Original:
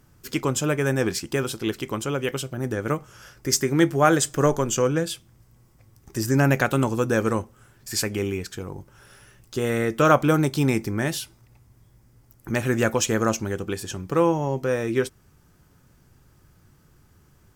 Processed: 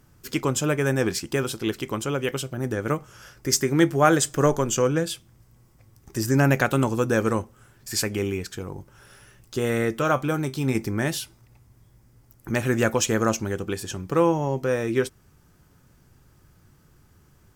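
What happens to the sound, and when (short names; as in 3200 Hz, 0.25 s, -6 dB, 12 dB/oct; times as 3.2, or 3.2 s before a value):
9.99–10.75 resonator 130 Hz, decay 0.19 s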